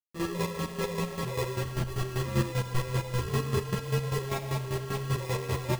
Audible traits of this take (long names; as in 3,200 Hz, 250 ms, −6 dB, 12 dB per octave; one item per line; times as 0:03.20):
a quantiser's noise floor 6 bits, dither none
chopped level 5.1 Hz, depth 65%, duty 30%
aliases and images of a low sample rate 1,500 Hz, jitter 0%
a shimmering, thickened sound